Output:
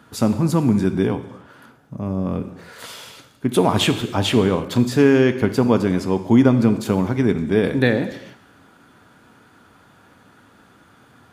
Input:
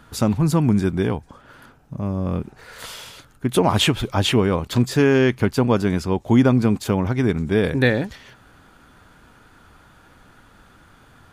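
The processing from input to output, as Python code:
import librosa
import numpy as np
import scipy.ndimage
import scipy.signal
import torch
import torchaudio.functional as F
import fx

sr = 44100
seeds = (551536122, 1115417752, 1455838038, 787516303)

y = scipy.signal.sosfilt(scipy.signal.bessel(2, 190.0, 'highpass', norm='mag', fs=sr, output='sos'), x)
y = fx.low_shelf(y, sr, hz=420.0, db=6.5)
y = fx.rev_gated(y, sr, seeds[0], gate_ms=350, shape='falling', drr_db=9.0)
y = F.gain(torch.from_numpy(y), -1.5).numpy()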